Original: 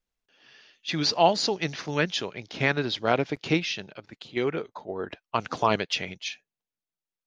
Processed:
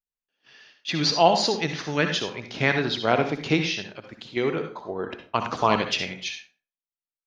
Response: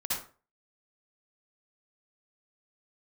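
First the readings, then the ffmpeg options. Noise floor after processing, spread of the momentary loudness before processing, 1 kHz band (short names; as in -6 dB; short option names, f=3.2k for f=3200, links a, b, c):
under -85 dBFS, 14 LU, +3.0 dB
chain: -filter_complex "[0:a]agate=range=-18dB:threshold=-56dB:ratio=16:detection=peak,asplit=2[a][b];[1:a]atrim=start_sample=2205[c];[b][c]afir=irnorm=-1:irlink=0,volume=-9dB[d];[a][d]amix=inputs=2:normalize=0"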